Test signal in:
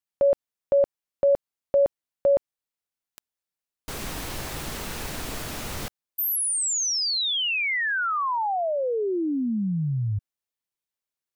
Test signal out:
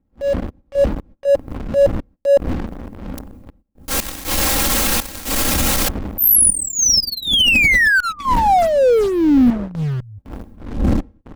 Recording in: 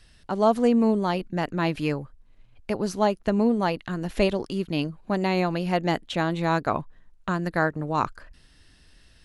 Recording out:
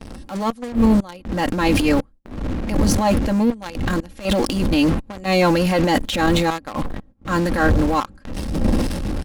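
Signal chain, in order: wind noise 160 Hz -32 dBFS; treble shelf 5.7 kHz +7 dB; comb 3.7 ms, depth 75%; trance gate "xx.x.xxx.xxx" 60 bpm -24 dB; level rider gain up to 16 dB; in parallel at -10 dB: fuzz box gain 39 dB, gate -33 dBFS; on the sum: gate -40 dBFS, range -18 dB; transient shaper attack -10 dB, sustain +8 dB; trim -4 dB

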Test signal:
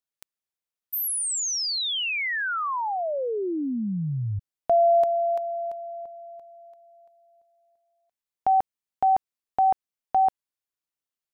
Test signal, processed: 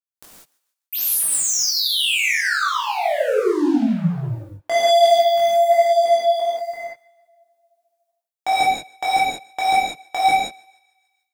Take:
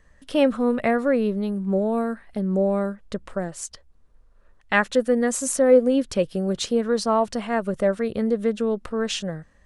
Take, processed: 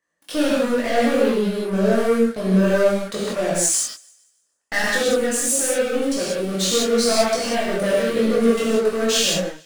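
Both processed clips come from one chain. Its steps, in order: high-pass 280 Hz 12 dB/octave; treble shelf 6 kHz +8 dB; waveshaping leveller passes 5; dynamic bell 950 Hz, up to -6 dB, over -24 dBFS, Q 1.5; thinning echo 148 ms, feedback 44%, high-pass 660 Hz, level -23.5 dB; gated-style reverb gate 210 ms flat, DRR -6 dB; level rider gain up to 12.5 dB; chorus voices 4, 0.74 Hz, delay 21 ms, depth 4.6 ms; trim -3.5 dB

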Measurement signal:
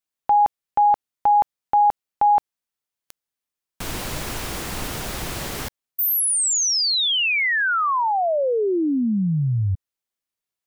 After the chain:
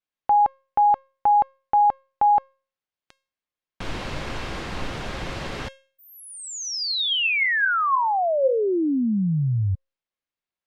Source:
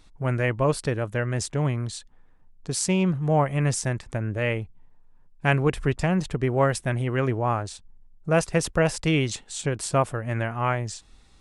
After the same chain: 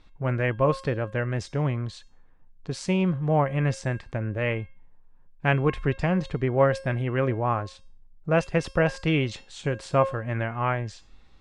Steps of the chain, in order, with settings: low-pass 3.7 kHz 12 dB/octave; feedback comb 540 Hz, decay 0.4 s, mix 70%; trim +9 dB

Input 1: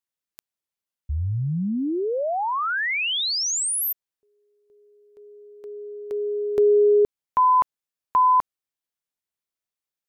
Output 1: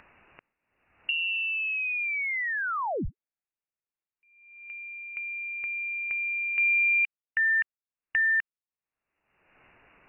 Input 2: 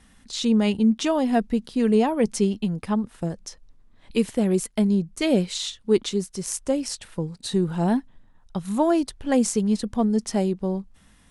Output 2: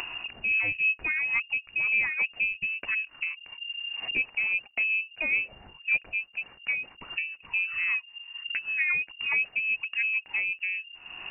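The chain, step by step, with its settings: gate with hold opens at -48 dBFS, hold 30 ms, range -11 dB; upward compressor 4:1, threshold -20 dBFS; frequency inversion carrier 2.8 kHz; trim -7 dB

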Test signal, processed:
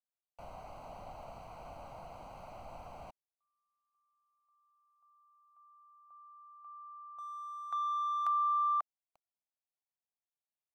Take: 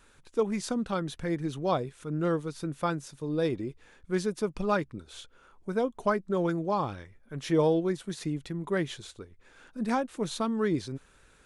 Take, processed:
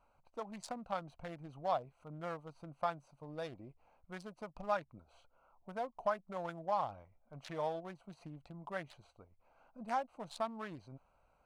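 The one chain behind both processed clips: local Wiener filter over 25 samples; compression 2:1, threshold -32 dBFS; resonant low shelf 520 Hz -9 dB, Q 3; trim -3.5 dB

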